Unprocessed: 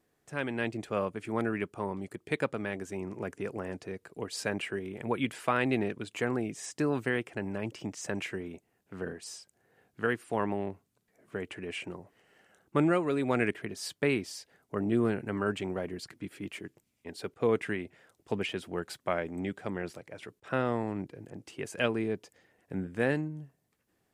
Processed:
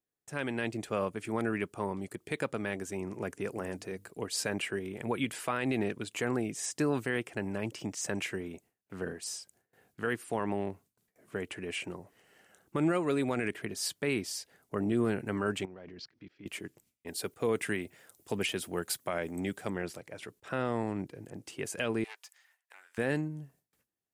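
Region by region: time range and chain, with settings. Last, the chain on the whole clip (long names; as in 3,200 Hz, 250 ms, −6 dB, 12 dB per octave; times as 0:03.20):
0:03.49–0:04.11: high-shelf EQ 10,000 Hz +6.5 dB + mains-hum notches 50/100/150/200/250/300 Hz
0:15.65–0:16.46: Butterworth low-pass 5,700 Hz 48 dB per octave + output level in coarse steps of 24 dB
0:17.07–0:19.70: high-pass filter 45 Hz + high-shelf EQ 8,200 Hz +12 dB
0:22.04–0:22.98: phase distortion by the signal itself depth 0.14 ms + inverse Chebyshev high-pass filter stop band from 160 Hz, stop band 80 dB
whole clip: noise gate with hold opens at −58 dBFS; high-shelf EQ 5,500 Hz +8.5 dB; brickwall limiter −19.5 dBFS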